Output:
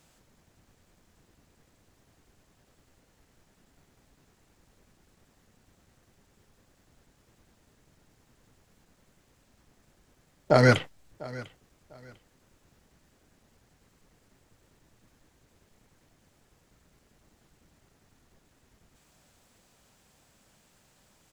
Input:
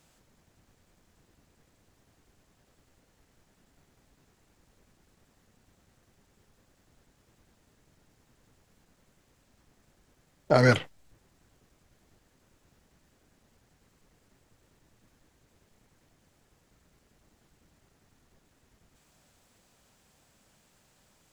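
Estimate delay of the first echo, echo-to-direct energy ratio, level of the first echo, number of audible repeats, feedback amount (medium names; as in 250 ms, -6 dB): 698 ms, -19.5 dB, -20.0 dB, 2, 26%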